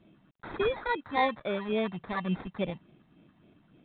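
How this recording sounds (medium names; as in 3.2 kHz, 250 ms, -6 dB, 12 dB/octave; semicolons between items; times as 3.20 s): a quantiser's noise floor 12-bit, dither none; phasing stages 8, 3.5 Hz, lowest notch 430–2300 Hz; aliases and images of a low sample rate 2.9 kHz, jitter 0%; µ-law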